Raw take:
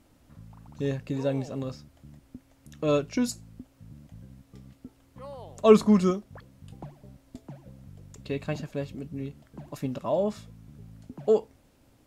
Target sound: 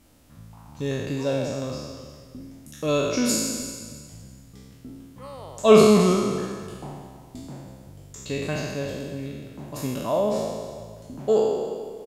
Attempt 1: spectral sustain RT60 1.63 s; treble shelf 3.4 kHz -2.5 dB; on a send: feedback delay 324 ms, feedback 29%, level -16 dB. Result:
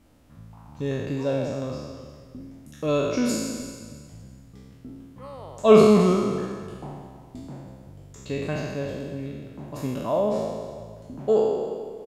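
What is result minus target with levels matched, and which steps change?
8 kHz band -7.5 dB
change: treble shelf 3.4 kHz +7 dB

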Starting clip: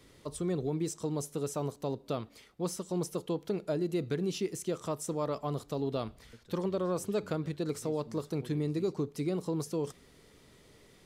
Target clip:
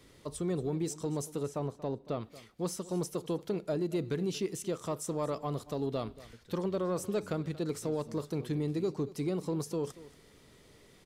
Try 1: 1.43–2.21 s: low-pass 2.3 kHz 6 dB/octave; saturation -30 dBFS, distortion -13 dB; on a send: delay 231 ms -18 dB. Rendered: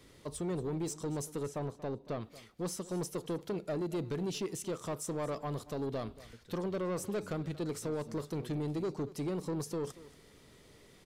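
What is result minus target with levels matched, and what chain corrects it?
saturation: distortion +15 dB
1.43–2.21 s: low-pass 2.3 kHz 6 dB/octave; saturation -20 dBFS, distortion -27 dB; on a send: delay 231 ms -18 dB

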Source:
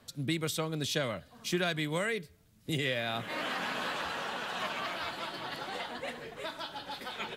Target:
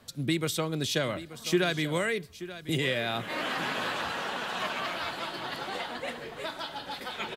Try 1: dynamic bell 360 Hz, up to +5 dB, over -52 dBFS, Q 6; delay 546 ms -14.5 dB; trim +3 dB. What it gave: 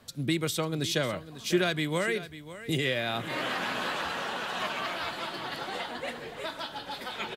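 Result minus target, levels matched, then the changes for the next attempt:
echo 335 ms early
change: delay 881 ms -14.5 dB

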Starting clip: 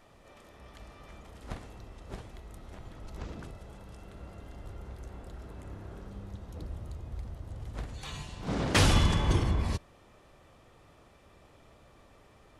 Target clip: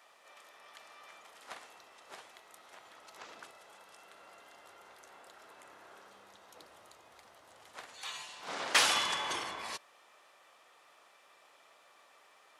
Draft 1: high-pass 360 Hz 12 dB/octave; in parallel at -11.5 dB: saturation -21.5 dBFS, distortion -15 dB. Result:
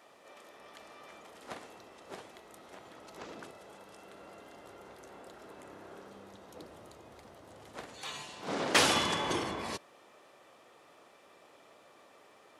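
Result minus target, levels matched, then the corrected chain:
500 Hz band +9.0 dB
high-pass 880 Hz 12 dB/octave; in parallel at -11.5 dB: saturation -21.5 dBFS, distortion -16 dB

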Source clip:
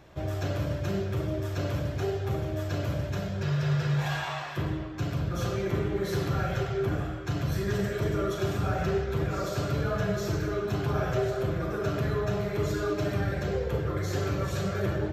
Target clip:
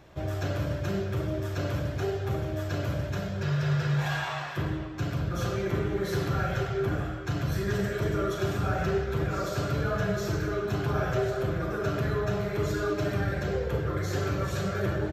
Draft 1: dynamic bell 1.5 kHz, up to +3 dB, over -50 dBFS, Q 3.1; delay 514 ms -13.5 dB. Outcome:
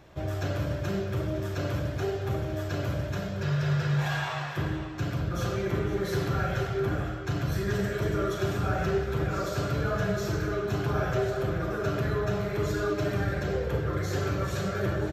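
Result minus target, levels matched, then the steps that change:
echo-to-direct +9 dB
change: delay 514 ms -22.5 dB

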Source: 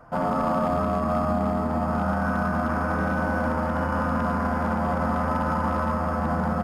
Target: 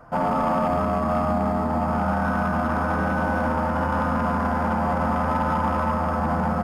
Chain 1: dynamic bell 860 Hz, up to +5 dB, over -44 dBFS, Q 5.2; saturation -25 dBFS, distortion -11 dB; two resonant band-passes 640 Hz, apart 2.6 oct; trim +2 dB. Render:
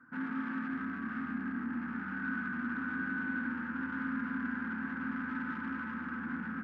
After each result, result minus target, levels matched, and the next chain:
500 Hz band -18.0 dB; saturation: distortion +12 dB
dynamic bell 860 Hz, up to +5 dB, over -44 dBFS, Q 5.2; saturation -25 dBFS, distortion -11 dB; trim +2 dB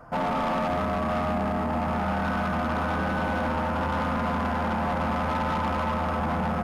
saturation: distortion +12 dB
dynamic bell 860 Hz, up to +5 dB, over -44 dBFS, Q 5.2; saturation -15.5 dBFS, distortion -23 dB; trim +2 dB

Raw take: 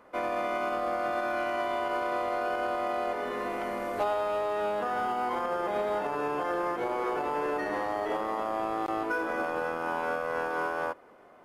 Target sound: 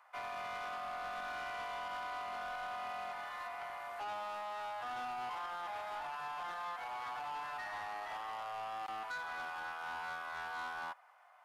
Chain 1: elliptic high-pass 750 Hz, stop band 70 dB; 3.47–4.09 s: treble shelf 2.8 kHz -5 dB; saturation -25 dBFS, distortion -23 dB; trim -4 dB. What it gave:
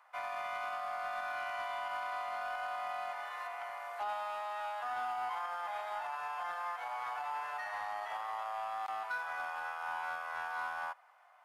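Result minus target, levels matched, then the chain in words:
saturation: distortion -11 dB
elliptic high-pass 750 Hz, stop band 70 dB; 3.47–4.09 s: treble shelf 2.8 kHz -5 dB; saturation -34 dBFS, distortion -11 dB; trim -4 dB

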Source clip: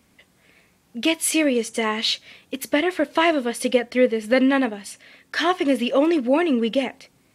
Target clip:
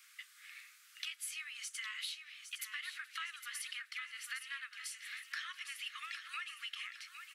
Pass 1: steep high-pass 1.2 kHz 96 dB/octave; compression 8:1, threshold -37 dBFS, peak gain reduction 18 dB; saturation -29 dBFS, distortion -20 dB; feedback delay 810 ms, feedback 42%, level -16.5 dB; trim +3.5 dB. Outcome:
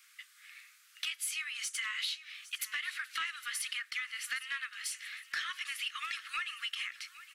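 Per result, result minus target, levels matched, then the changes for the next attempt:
compression: peak gain reduction -7.5 dB; echo-to-direct -7.5 dB
change: compression 8:1, threshold -45.5 dBFS, peak gain reduction 25.5 dB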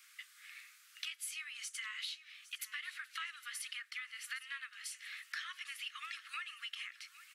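echo-to-direct -7.5 dB
change: feedback delay 810 ms, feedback 42%, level -9 dB

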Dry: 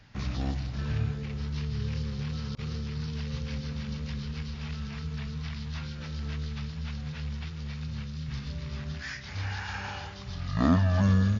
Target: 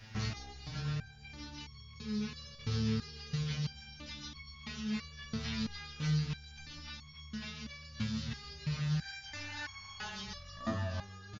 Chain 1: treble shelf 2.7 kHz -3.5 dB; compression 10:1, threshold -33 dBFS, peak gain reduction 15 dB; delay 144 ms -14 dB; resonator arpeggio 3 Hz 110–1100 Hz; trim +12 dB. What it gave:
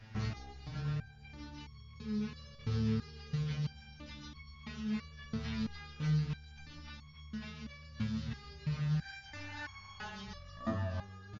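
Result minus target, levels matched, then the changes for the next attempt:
4 kHz band -6.5 dB
change: treble shelf 2.7 kHz +7.5 dB

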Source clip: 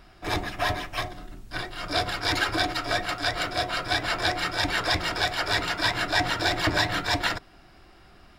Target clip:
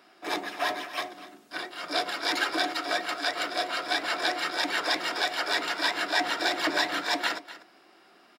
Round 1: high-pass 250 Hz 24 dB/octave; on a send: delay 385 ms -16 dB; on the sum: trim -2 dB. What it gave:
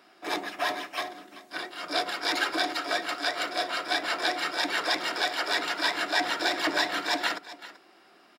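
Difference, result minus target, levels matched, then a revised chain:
echo 139 ms late
high-pass 250 Hz 24 dB/octave; on a send: delay 246 ms -16 dB; on the sum: trim -2 dB

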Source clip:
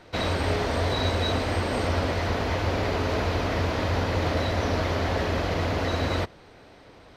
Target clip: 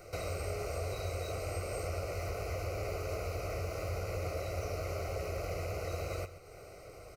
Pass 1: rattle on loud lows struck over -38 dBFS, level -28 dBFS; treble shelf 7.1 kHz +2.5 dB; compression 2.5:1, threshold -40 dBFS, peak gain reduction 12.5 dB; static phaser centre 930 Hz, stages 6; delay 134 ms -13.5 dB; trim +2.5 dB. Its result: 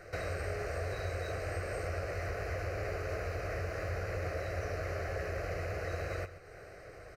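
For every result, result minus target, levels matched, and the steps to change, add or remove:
8 kHz band -6.0 dB; 2 kHz band +5.0 dB
change: treble shelf 7.1 kHz +14 dB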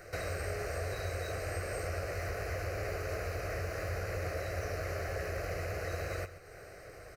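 2 kHz band +5.0 dB
add after compression: Butterworth band-stop 1.7 kHz, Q 2.6

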